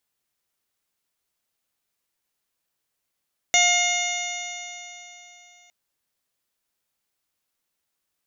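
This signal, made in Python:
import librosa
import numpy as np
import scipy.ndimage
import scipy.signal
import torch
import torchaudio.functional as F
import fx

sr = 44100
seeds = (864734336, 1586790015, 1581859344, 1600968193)

y = fx.additive_stiff(sr, length_s=2.16, hz=707.0, level_db=-22, upper_db=(-15.0, 4.0, -3, -1.0, -12.0, -15.5, 0.0, 0.5), decay_s=3.34, stiffness=0.0014)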